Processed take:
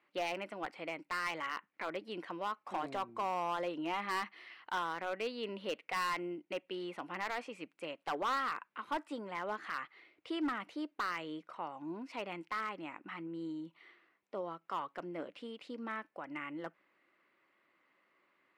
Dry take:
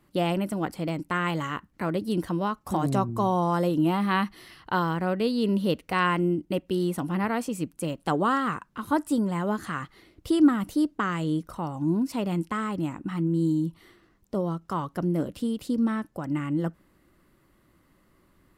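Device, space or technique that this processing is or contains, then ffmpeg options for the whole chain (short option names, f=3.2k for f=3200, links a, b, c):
megaphone: -af "highpass=530,lowpass=3.2k,equalizer=f=2.3k:t=o:w=0.59:g=9,asoftclip=type=hard:threshold=-23dB,volume=-6.5dB"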